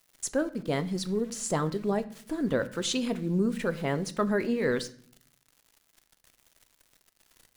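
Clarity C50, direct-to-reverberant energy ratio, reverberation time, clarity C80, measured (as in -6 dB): 16.5 dB, 11.0 dB, 0.55 s, 20.0 dB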